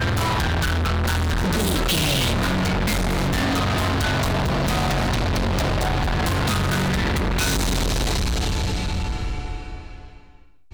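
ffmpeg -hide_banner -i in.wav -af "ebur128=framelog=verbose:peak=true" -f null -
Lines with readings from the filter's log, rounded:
Integrated loudness:
  I:         -22.0 LUFS
  Threshold: -32.4 LUFS
Loudness range:
  LRA:         3.0 LU
  Threshold: -42.0 LUFS
  LRA low:   -24.2 LUFS
  LRA high:  -21.2 LUFS
True peak:
  Peak:      -13.3 dBFS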